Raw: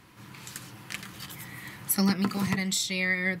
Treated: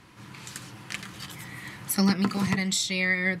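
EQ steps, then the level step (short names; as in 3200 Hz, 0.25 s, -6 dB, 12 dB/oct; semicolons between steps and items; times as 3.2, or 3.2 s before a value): LPF 10000 Hz 12 dB/oct; +2.0 dB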